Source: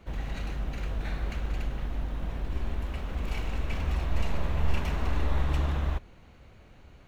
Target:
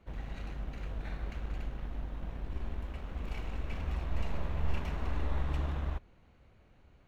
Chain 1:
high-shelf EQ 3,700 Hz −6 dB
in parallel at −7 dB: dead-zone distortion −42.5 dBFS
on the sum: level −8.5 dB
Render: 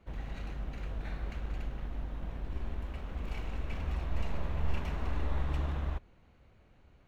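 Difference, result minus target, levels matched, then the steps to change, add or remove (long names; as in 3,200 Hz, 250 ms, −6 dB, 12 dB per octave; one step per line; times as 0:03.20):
dead-zone distortion: distortion −7 dB
change: dead-zone distortion −35.5 dBFS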